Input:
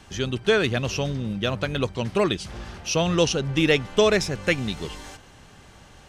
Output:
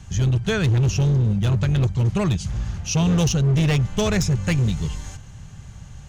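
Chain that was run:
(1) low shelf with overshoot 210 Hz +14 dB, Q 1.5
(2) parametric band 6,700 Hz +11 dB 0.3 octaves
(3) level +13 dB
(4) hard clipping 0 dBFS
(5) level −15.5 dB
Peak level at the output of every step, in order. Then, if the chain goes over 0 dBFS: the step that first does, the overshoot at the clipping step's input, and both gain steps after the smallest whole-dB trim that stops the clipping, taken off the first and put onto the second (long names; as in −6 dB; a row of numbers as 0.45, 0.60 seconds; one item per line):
−3.5, −3.5, +9.5, 0.0, −15.5 dBFS
step 3, 9.5 dB
step 3 +3 dB, step 5 −5.5 dB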